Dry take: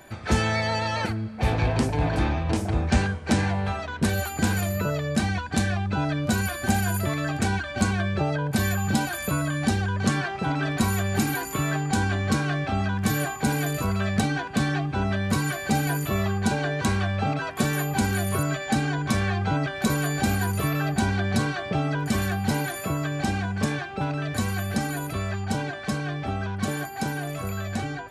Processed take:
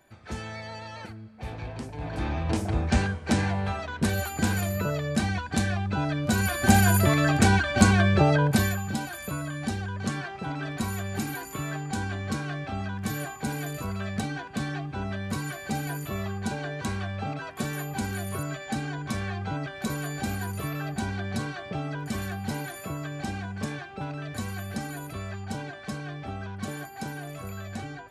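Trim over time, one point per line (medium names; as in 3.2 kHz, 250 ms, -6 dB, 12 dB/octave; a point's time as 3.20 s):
1.92 s -13.5 dB
2.42 s -2 dB
6.24 s -2 dB
6.75 s +5 dB
8.45 s +5 dB
8.86 s -7 dB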